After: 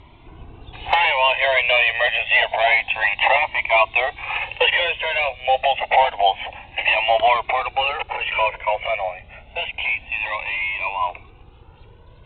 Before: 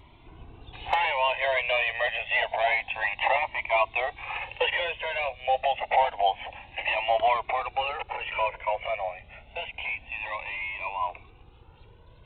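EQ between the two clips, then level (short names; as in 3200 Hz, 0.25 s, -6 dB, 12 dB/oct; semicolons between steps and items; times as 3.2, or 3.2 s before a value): dynamic EQ 3300 Hz, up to +6 dB, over -42 dBFS, Q 0.87; air absorption 83 m; +6.5 dB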